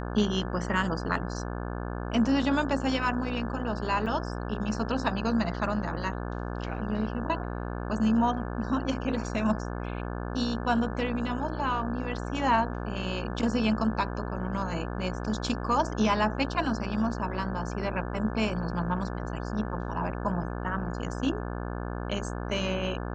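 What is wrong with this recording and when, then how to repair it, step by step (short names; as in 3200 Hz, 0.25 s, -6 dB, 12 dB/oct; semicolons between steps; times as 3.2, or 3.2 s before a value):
buzz 60 Hz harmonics 29 -34 dBFS
4.06 gap 4 ms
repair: de-hum 60 Hz, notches 29; interpolate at 4.06, 4 ms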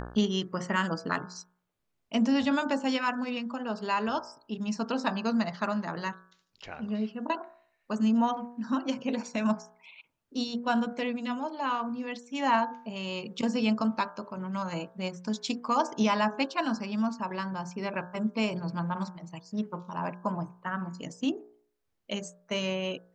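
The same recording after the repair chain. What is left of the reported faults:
none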